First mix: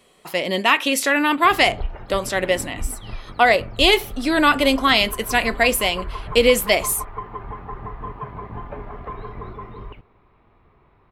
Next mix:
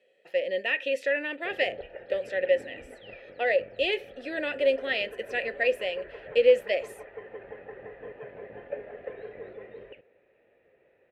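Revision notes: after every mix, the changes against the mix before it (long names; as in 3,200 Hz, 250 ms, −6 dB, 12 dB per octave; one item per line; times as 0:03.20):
background +8.0 dB
master: add formant filter e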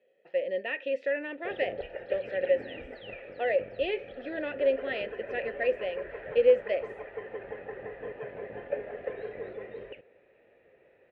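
speech: add head-to-tape spacing loss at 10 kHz 33 dB
background +3.0 dB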